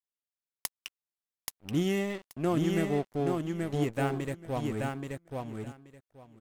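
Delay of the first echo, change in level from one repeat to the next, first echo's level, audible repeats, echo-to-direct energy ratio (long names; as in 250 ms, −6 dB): 829 ms, −16.0 dB, −3.5 dB, 2, −3.5 dB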